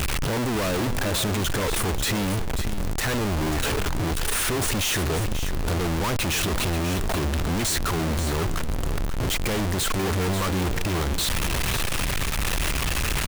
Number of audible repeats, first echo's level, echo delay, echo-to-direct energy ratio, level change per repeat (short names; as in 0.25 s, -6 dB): 1, -10.0 dB, 0.539 s, -10.0 dB, no steady repeat